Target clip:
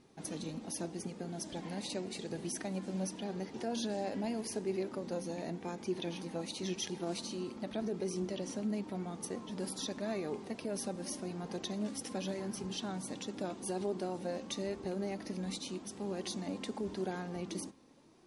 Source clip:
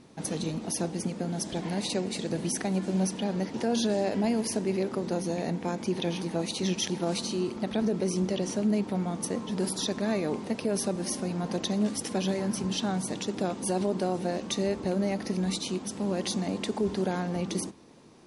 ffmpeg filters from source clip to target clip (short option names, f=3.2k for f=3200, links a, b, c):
-af "flanger=delay=2.4:depth=1.4:regen=59:speed=0.87:shape=sinusoidal,volume=-4.5dB"